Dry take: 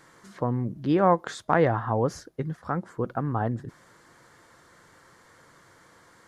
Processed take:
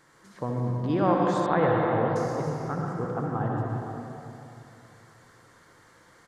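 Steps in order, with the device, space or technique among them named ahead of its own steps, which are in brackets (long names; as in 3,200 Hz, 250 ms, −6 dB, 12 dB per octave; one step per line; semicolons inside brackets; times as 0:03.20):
cave (single-tap delay 320 ms −8.5 dB; convolution reverb RT60 2.8 s, pre-delay 58 ms, DRR −1.5 dB)
0:01.46–0:02.16: Butterworth low-pass 3,800 Hz 48 dB per octave
level −5 dB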